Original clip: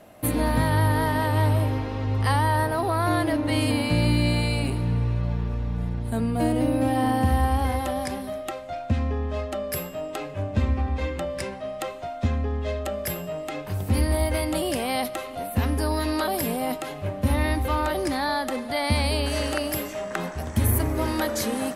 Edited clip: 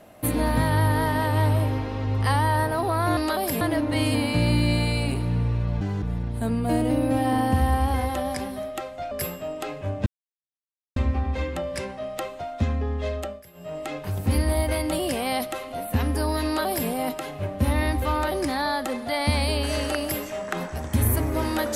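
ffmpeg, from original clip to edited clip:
-filter_complex "[0:a]asplit=9[a][b][c][d][e][f][g][h][i];[a]atrim=end=3.172[j];[b]atrim=start=16.078:end=16.522[k];[c]atrim=start=3.168:end=5.374[l];[d]atrim=start=5.37:end=5.73,asetpts=PTS-STARTPTS,asetrate=74970,aresample=44100[m];[e]atrim=start=5.726:end=8.822[n];[f]atrim=start=9.638:end=10.59,asetpts=PTS-STARTPTS,afade=t=out:st=0.948:d=0.004:c=hsin,apad=pad_dur=0.9[o];[g]atrim=start=10.59:end=13.06,asetpts=PTS-STARTPTS,afade=t=in:d=0.004:c=hsin,afade=t=out:st=2.22:d=0.25:silence=0.0891251[p];[h]atrim=start=13.06:end=13.16,asetpts=PTS-STARTPTS,volume=-21dB[q];[i]atrim=start=13.16,asetpts=PTS-STARTPTS,afade=t=in:d=0.25:silence=0.0891251[r];[j][k]acrossfade=d=0.004:c1=hsin:c2=hsin[s];[s][l]acrossfade=d=0.004:c1=hsin:c2=hsin[t];[t][m]acrossfade=d=0.004:c1=hsin:c2=hsin[u];[u][n]acrossfade=d=0.004:c1=hsin:c2=hsin[v];[o][p][q][r]concat=n=4:v=0:a=1[w];[v][w]acrossfade=d=0.004:c1=hsin:c2=hsin"

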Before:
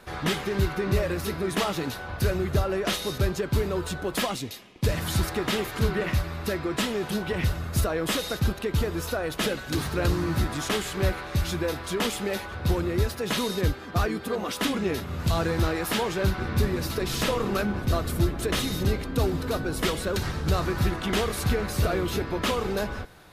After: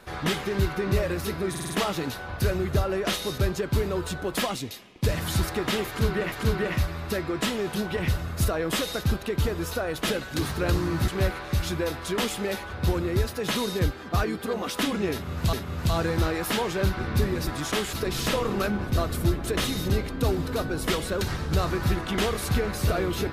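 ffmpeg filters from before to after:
-filter_complex "[0:a]asplit=10[a][b][c][d][e][f][g][h][i][j];[a]atrim=end=1.552[k];[b]atrim=start=1.498:end=1.552[l];[c]atrim=start=1.498:end=1.552[m];[d]atrim=start=1.498:end=1.552[n];[e]atrim=start=1.498:end=6.122[o];[f]atrim=start=5.678:end=10.442[p];[g]atrim=start=10.898:end=15.352[q];[h]atrim=start=14.938:end=16.882[r];[i]atrim=start=10.438:end=10.902[s];[j]atrim=start=16.878[t];[k][l]acrossfade=d=0.004:c1=hsin:c2=hsin[u];[u][m]acrossfade=d=0.004:c1=hsin:c2=hsin[v];[v][n]acrossfade=d=0.004:c1=hsin:c2=hsin[w];[w][o]acrossfade=d=0.004:c1=hsin:c2=hsin[x];[x][p]acrossfade=d=0.004:c1=hsin:c2=hsin[y];[y][q]acrossfade=d=0.004:c1=hsin:c2=hsin[z];[z][r]acrossfade=d=0.004:c1=hsin:c2=hsin[aa];[aa][s]acrossfade=d=0.004:c1=hsin:c2=hsin[ab];[ab][t]acrossfade=d=0.004:c1=hsin:c2=hsin"

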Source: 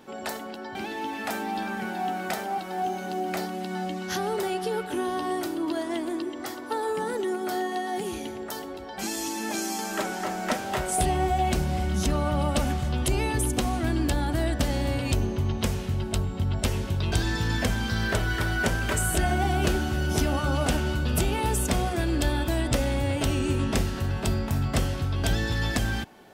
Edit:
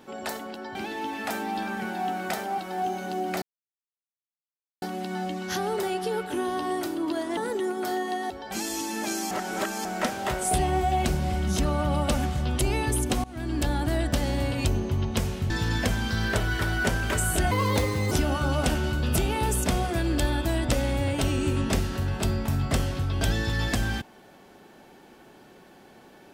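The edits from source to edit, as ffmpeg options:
-filter_complex "[0:a]asplit=10[a][b][c][d][e][f][g][h][i][j];[a]atrim=end=3.42,asetpts=PTS-STARTPTS,afade=t=out:st=3.416:d=0.004:c=hsin,apad=pad_dur=1.4[k];[b]atrim=start=3.42:end=5.972,asetpts=PTS-STARTPTS,afade=t=in:d=0.004:c=hsin[l];[c]atrim=start=7.008:end=7.942[m];[d]atrim=start=8.768:end=9.782[n];[e]atrim=start=9.778:end=10.322,asetpts=PTS-STARTPTS,areverse[o];[f]atrim=start=10.318:end=13.71,asetpts=PTS-STARTPTS,afade=t=out:st=3.388:d=0.004:c=hsin:silence=0.0749894[p];[g]atrim=start=13.71:end=15.972,asetpts=PTS-STARTPTS,afade=t=in:d=0.44:silence=0.0749894[q];[h]atrim=start=17.288:end=19.304[r];[i]atrim=start=19.3:end=20.14,asetpts=PTS-STARTPTS,asetrate=61299,aresample=44100,atrim=end_sample=26650,asetpts=PTS-STARTPTS[s];[j]atrim=start=20.136[t];[k][l]concat=n=2:v=0:a=1[u];[u][m]acrossfade=d=0.004:c1=hsin:c2=hsin[v];[v][n]acrossfade=d=0.004:c1=hsin:c2=hsin[w];[w][o]acrossfade=d=0.004:c1=hsin:c2=hsin[x];[p][q]concat=n=2:v=0:a=1[y];[x][y]acrossfade=d=0.004:c1=hsin:c2=hsin[z];[z][r]acrossfade=d=0.004:c1=hsin:c2=hsin[aa];[aa][s]acrossfade=d=0.004:c1=hsin:c2=hsin[ab];[ab][t]acrossfade=d=0.004:c1=hsin:c2=hsin"

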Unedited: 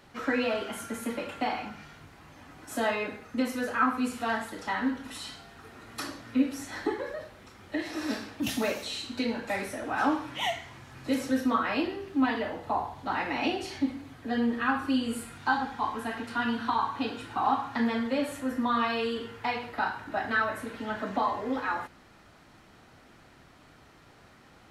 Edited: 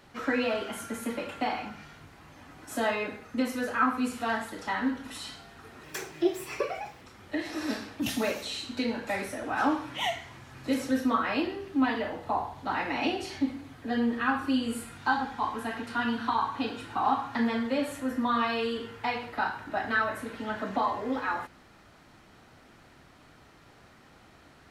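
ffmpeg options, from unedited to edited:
-filter_complex "[0:a]asplit=3[a][b][c];[a]atrim=end=5.834[d];[b]atrim=start=5.83:end=7.42,asetpts=PTS-STARTPTS,asetrate=59094,aresample=44100[e];[c]atrim=start=7.416[f];[d][e]acrossfade=d=0.004:c1=hsin:c2=hsin[g];[g][f]acrossfade=d=0.004:c1=hsin:c2=hsin"

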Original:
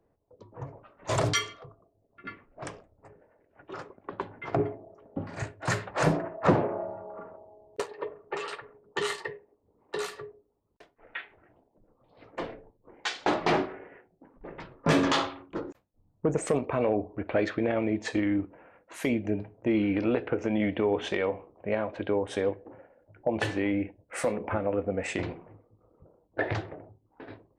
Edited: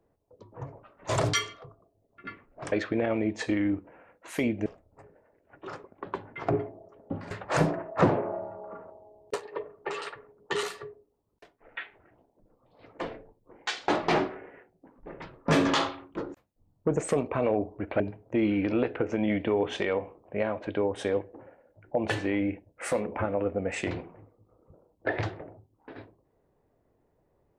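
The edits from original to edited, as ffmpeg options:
-filter_complex "[0:a]asplit=6[a][b][c][d][e][f];[a]atrim=end=2.722[g];[b]atrim=start=17.378:end=19.322[h];[c]atrim=start=2.718:end=5.372[i];[d]atrim=start=5.768:end=9.092[j];[e]atrim=start=10.008:end=17.382[k];[f]atrim=start=19.318[l];[g][h]acrossfade=d=0.004:c1=hsin:c2=hsin[m];[m][i]acrossfade=d=0.004:c1=hsin:c2=hsin[n];[n][j]acrossfade=d=0.004:c1=hsin:c2=hsin[o];[o][k]acrossfade=d=0.004:c1=hsin:c2=hsin[p];[p][l]acrossfade=d=0.004:c1=hsin:c2=hsin"

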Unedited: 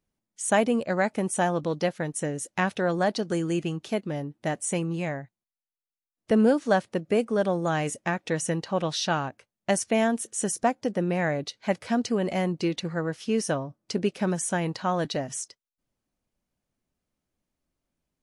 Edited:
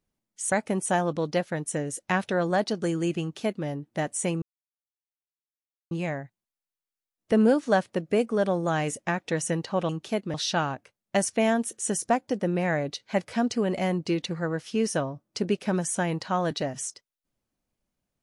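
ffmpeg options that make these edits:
-filter_complex "[0:a]asplit=5[a][b][c][d][e];[a]atrim=end=0.522[f];[b]atrim=start=0.998:end=4.9,asetpts=PTS-STARTPTS,afade=t=out:st=3.898:d=0.004:c=hsin,apad=pad_dur=1.49[g];[c]atrim=start=4.9:end=8.882,asetpts=PTS-STARTPTS,afade=t=in:d=0.004:c=hsin[h];[d]atrim=start=3.688:end=4.142[i];[e]atrim=start=8.878[j];[g][h]concat=n=2:v=0:a=1[k];[f][k]acrossfade=d=0.004:c1=hsin:c2=hsin[l];[l][i]acrossfade=d=0.004:c1=hsin:c2=hsin[m];[m][j]acrossfade=d=0.004:c1=hsin:c2=hsin"

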